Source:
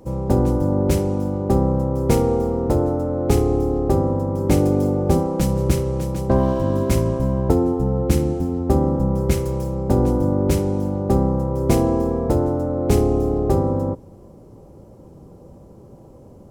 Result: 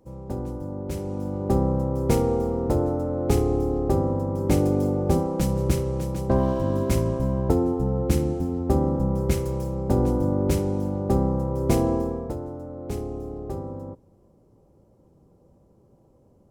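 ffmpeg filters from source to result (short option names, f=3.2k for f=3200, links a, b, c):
-af "volume=-4dB,afade=t=in:st=0.88:d=0.63:silence=0.334965,afade=t=out:st=11.93:d=0.43:silence=0.316228"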